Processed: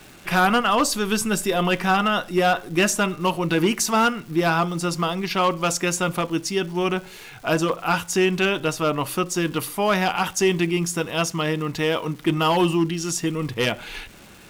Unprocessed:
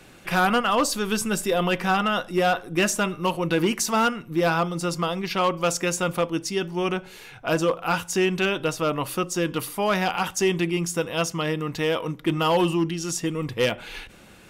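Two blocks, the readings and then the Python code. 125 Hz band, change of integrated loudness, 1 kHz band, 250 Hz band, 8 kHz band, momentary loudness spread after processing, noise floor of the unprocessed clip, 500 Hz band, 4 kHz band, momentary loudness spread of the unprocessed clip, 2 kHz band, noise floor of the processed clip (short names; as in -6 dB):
+2.5 dB, +2.0 dB, +2.5 dB, +2.5 dB, +2.5 dB, 5 LU, -48 dBFS, +1.0 dB, +2.5 dB, 5 LU, +2.5 dB, -45 dBFS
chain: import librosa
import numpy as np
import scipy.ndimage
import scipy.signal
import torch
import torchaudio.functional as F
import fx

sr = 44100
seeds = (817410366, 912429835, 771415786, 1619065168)

y = fx.notch(x, sr, hz=510.0, q=12.0)
y = fx.dmg_crackle(y, sr, seeds[0], per_s=540.0, level_db=-40.0)
y = y * 10.0 ** (2.5 / 20.0)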